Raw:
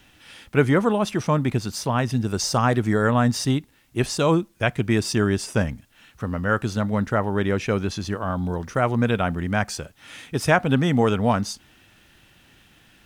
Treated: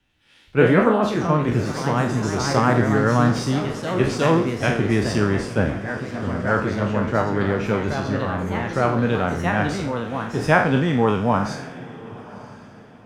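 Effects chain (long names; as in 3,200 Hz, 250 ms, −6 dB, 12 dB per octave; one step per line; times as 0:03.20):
peak hold with a decay on every bin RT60 0.55 s
low-pass filter 2,200 Hz 6 dB per octave
notch filter 680 Hz, Q 19
on a send: feedback delay with all-pass diffusion 1,020 ms, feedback 44%, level −12.5 dB
on the sum: delay with pitch and tempo change per echo 95 ms, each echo +2 semitones, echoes 3, each echo −6 dB
multiband upward and downward expander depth 40%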